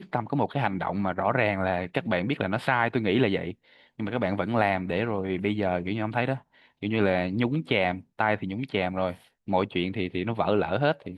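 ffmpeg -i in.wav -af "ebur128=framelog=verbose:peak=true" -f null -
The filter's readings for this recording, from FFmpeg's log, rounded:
Integrated loudness:
  I:         -27.1 LUFS
  Threshold: -37.3 LUFS
Loudness range:
  LRA:         1.5 LU
  Threshold: -47.3 LUFS
  LRA low:   -28.0 LUFS
  LRA high:  -26.5 LUFS
True peak:
  Peak:       -7.2 dBFS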